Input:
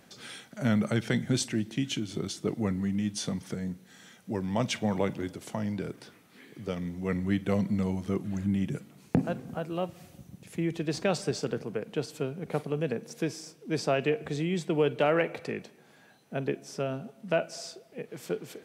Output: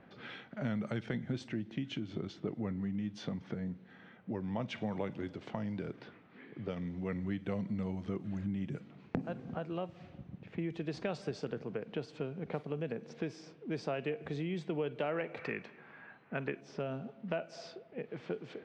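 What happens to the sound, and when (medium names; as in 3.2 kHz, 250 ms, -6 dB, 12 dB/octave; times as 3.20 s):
1.06–4.78 s: treble shelf 3.9 kHz -9 dB
15.37–16.61 s: high-order bell 1.6 kHz +8 dB
whole clip: level-controlled noise filter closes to 2 kHz, open at -26 dBFS; low-pass 3.7 kHz 12 dB/octave; compression 2.5:1, threshold -37 dBFS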